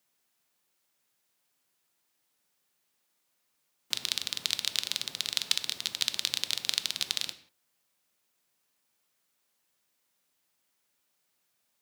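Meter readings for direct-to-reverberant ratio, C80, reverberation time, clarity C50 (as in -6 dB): 10.5 dB, 16.0 dB, no single decay rate, 13.5 dB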